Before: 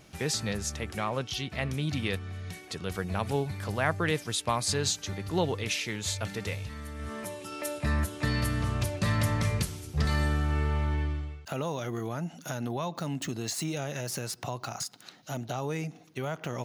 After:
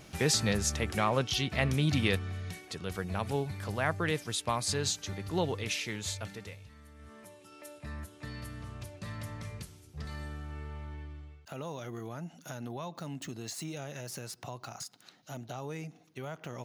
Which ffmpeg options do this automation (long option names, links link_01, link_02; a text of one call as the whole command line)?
ffmpeg -i in.wav -af "volume=10dB,afade=type=out:start_time=2.06:duration=0.62:silence=0.501187,afade=type=out:start_time=5.97:duration=0.6:silence=0.281838,afade=type=in:start_time=11.09:duration=0.62:silence=0.446684" out.wav